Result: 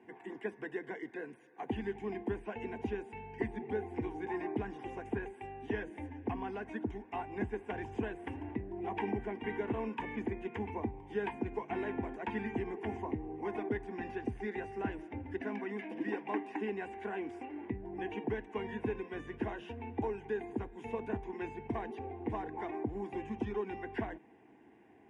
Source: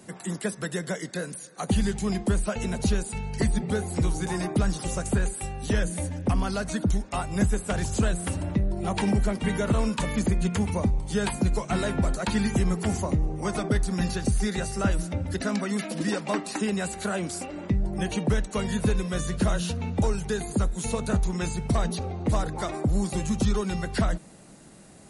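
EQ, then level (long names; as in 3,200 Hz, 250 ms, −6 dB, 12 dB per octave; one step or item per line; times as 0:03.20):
band-pass filter 150–7,800 Hz
high-frequency loss of the air 380 metres
phaser with its sweep stopped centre 860 Hz, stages 8
−3.5 dB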